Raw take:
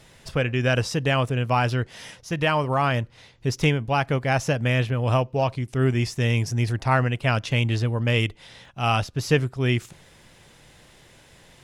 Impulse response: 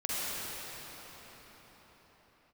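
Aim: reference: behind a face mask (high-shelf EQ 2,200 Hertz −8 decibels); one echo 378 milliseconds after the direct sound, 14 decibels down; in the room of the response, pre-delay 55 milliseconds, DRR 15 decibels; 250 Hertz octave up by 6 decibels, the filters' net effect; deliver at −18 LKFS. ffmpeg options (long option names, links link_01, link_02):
-filter_complex "[0:a]equalizer=frequency=250:width_type=o:gain=7.5,aecho=1:1:378:0.2,asplit=2[link_01][link_02];[1:a]atrim=start_sample=2205,adelay=55[link_03];[link_02][link_03]afir=irnorm=-1:irlink=0,volume=-23.5dB[link_04];[link_01][link_04]amix=inputs=2:normalize=0,highshelf=frequency=2200:gain=-8,volume=4dB"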